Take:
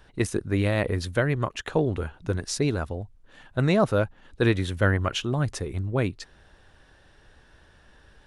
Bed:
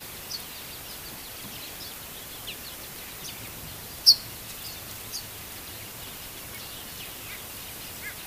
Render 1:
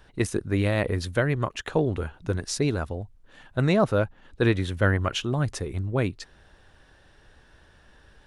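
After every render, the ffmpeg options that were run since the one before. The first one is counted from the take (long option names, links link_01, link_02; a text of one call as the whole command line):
ffmpeg -i in.wav -filter_complex "[0:a]asettb=1/sr,asplit=3[link_01][link_02][link_03];[link_01]atrim=end=3.734[link_04];[link_02]atrim=start=3.73:end=4.84,asetpts=PTS-STARTPTS,afade=type=in:duration=0.004:curve=qsin,afade=type=out:start_time=1.106:duration=0.004:curve=qsin,highshelf=frequency=5400:gain=-4[link_05];[link_03]atrim=start=4.836[link_06];[link_04][link_05]acrossfade=duration=0.004:curve1=hsin:curve2=qsin[link_07];[link_07][link_06]acrossfade=duration=0.004:curve1=qsin:curve2=hsin" out.wav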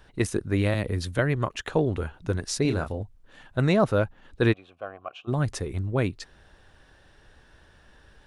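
ffmpeg -i in.wav -filter_complex "[0:a]asettb=1/sr,asplit=3[link_01][link_02][link_03];[link_01]atrim=end=0.744[link_04];[link_02]atrim=start=0.74:end=1.19,asetpts=PTS-STARTPTS,afade=type=in:duration=0.004:curve=qsin,afade=type=out:start_time=0.446:duration=0.004:curve=qsin,acrossover=split=310|3000[link_05][link_06][link_07];[link_06]acompressor=threshold=-43dB:ratio=1.5:attack=3.2:release=140:knee=2.83:detection=peak[link_08];[link_05][link_08][link_07]amix=inputs=3:normalize=0[link_09];[link_03]atrim=start=1.186[link_10];[link_04][link_09]acrossfade=duration=0.004:curve1=hsin:curve2=qsin[link_11];[link_11][link_10]acrossfade=duration=0.004:curve1=qsin:curve2=hsin,asettb=1/sr,asplit=3[link_12][link_13][link_14];[link_12]atrim=end=2.624[link_15];[link_13]atrim=start=2.62:end=3.03,asetpts=PTS-STARTPTS,afade=type=in:duration=0.004:curve=qsin,afade=type=out:start_time=0.406:duration=0.004:curve=qsin,asplit=2[link_16][link_17];[link_17]adelay=31,volume=-7dB[link_18];[link_16][link_18]amix=inputs=2:normalize=0,atrim=end_sample=18081[link_19];[link_14]atrim=start=3.026[link_20];[link_15][link_19]acrossfade=duration=0.004:curve1=hsin:curve2=qsin[link_21];[link_21][link_20]acrossfade=duration=0.004:curve1=qsin:curve2=hsin,asplit=3[link_22][link_23][link_24];[link_22]afade=type=out:start_time=4.52:duration=0.02[link_25];[link_23]asplit=3[link_26][link_27][link_28];[link_26]bandpass=frequency=730:width_type=q:width=8,volume=0dB[link_29];[link_27]bandpass=frequency=1090:width_type=q:width=8,volume=-6dB[link_30];[link_28]bandpass=frequency=2440:width_type=q:width=8,volume=-9dB[link_31];[link_29][link_30][link_31]amix=inputs=3:normalize=0,afade=type=in:start_time=4.52:duration=0.02,afade=type=out:start_time=5.27:duration=0.02[link_32];[link_24]afade=type=in:start_time=5.27:duration=0.02[link_33];[link_25][link_32][link_33]amix=inputs=3:normalize=0" out.wav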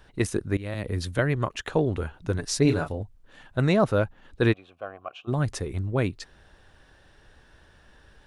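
ffmpeg -i in.wav -filter_complex "[0:a]asettb=1/sr,asplit=3[link_01][link_02][link_03];[link_01]atrim=end=2.384[link_04];[link_02]atrim=start=2.38:end=2.89,asetpts=PTS-STARTPTS,afade=type=in:duration=0.004:curve=qsin,afade=type=out:start_time=0.506:duration=0.004:curve=qsin,aecho=1:1:6.9:0.64,atrim=end_sample=22491[link_05];[link_03]atrim=start=2.886[link_06];[link_04][link_05]acrossfade=duration=0.004:curve1=hsin:curve2=qsin[link_07];[link_07][link_06]acrossfade=duration=0.004:curve1=qsin:curve2=hsin,asplit=2[link_08][link_09];[link_08]atrim=end=0.57,asetpts=PTS-STARTPTS,afade=type=out:start_time=0.566:duration=0.004:curve=hsin:silence=0.105925[link_10];[link_09]atrim=start=0.57,asetpts=PTS-STARTPTS,afade=type=in:duration=0.41:silence=0.105925[link_11];[link_10][link_11]concat=n=2:v=0:a=1" out.wav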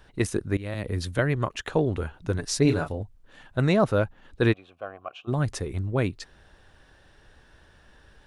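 ffmpeg -i in.wav -af anull out.wav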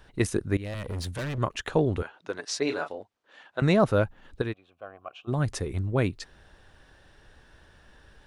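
ffmpeg -i in.wav -filter_complex "[0:a]asettb=1/sr,asplit=3[link_01][link_02][link_03];[link_01]atrim=end=0.644[link_04];[link_02]atrim=start=0.64:end=1.38,asetpts=PTS-STARTPTS,afade=type=in:duration=0.004:curve=qsin,afade=type=out:start_time=0.736:duration=0.004:curve=qsin,volume=30dB,asoftclip=hard,volume=-30dB[link_05];[link_03]atrim=start=1.376[link_06];[link_04][link_05]acrossfade=duration=0.004:curve1=hsin:curve2=qsin[link_07];[link_07][link_06]acrossfade=duration=0.004:curve1=qsin:curve2=hsin,asettb=1/sr,asplit=3[link_08][link_09][link_10];[link_08]atrim=end=2.024[link_11];[link_09]atrim=start=2.02:end=3.62,asetpts=PTS-STARTPTS,afade=type=in:duration=0.004:curve=qsin,afade=type=out:start_time=1.596:duration=0.004:curve=qsin,highpass=460,lowpass=5800[link_12];[link_10]atrim=start=3.616[link_13];[link_11][link_12]acrossfade=duration=0.004:curve1=hsin:curve2=qsin[link_14];[link_14][link_13]acrossfade=duration=0.004:curve1=qsin:curve2=hsin,asplit=2[link_15][link_16];[link_15]atrim=end=4.42,asetpts=PTS-STARTPTS,afade=type=out:start_time=4.416:duration=0.004:curve=hsin:silence=0.223872[link_17];[link_16]atrim=start=4.42,asetpts=PTS-STARTPTS,afade=type=in:duration=1.16:silence=0.223872[link_18];[link_17][link_18]concat=n=2:v=0:a=1" out.wav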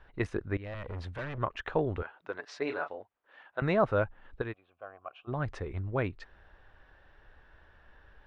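ffmpeg -i in.wav -af "lowpass=2000,equalizer=frequency=190:width=0.45:gain=-9" out.wav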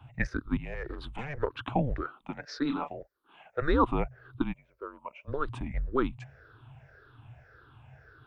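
ffmpeg -i in.wav -af "afftfilt=real='re*pow(10,16/40*sin(2*PI*(0.65*log(max(b,1)*sr/1024/100)/log(2)-(-1.8)*(pts-256)/sr)))':imag='im*pow(10,16/40*sin(2*PI*(0.65*log(max(b,1)*sr/1024/100)/log(2)-(-1.8)*(pts-256)/sr)))':win_size=1024:overlap=0.75,afreqshift=-140" out.wav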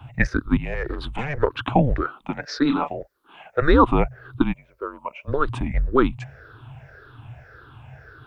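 ffmpeg -i in.wav -af "volume=10dB,alimiter=limit=-2dB:level=0:latency=1" out.wav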